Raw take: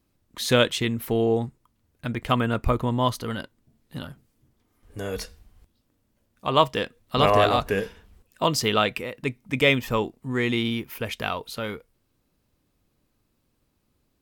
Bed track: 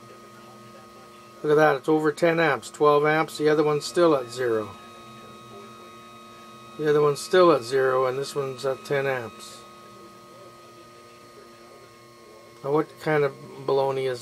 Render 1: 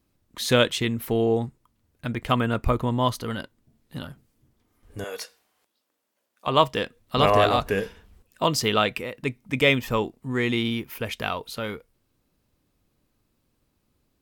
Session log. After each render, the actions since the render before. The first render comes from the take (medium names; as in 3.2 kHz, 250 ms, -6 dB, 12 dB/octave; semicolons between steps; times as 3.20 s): 5.04–6.47 s: high-pass 540 Hz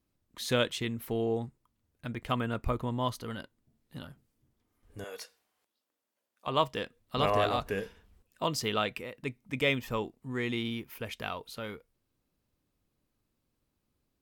trim -8.5 dB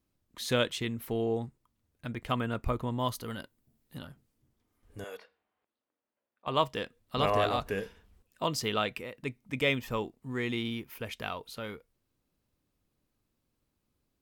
2.99–3.98 s: treble shelf 10 kHz +11 dB; 5.17–6.47 s: distance through air 430 m; 9.90–11.33 s: short-mantissa float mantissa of 6-bit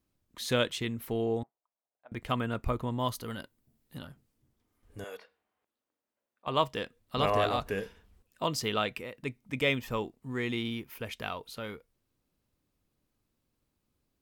1.43–2.12 s: ladder band-pass 780 Hz, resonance 60%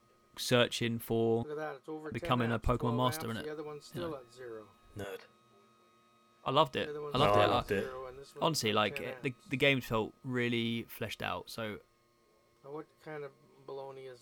add bed track -21.5 dB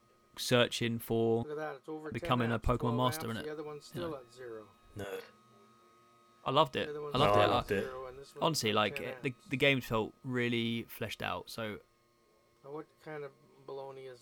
5.08–6.49 s: doubling 42 ms -2 dB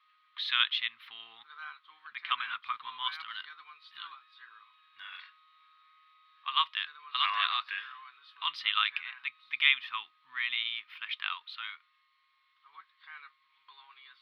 elliptic band-pass 1.1–3.7 kHz, stop band 40 dB; treble shelf 2.2 kHz +11.5 dB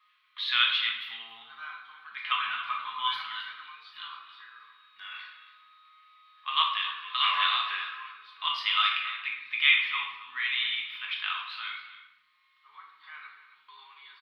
delay 273 ms -14 dB; simulated room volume 280 m³, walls mixed, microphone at 1.4 m